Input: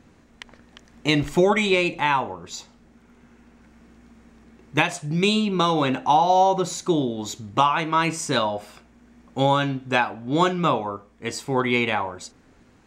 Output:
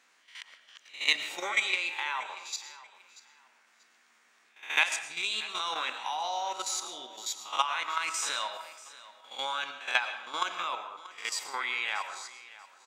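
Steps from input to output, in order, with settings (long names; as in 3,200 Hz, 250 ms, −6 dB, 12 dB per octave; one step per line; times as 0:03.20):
peak hold with a rise ahead of every peak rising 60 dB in 0.38 s
high-pass filter 1,400 Hz 12 dB per octave
output level in coarse steps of 11 dB
repeating echo 635 ms, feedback 25%, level −18 dB
convolution reverb RT60 0.75 s, pre-delay 69 ms, DRR 10 dB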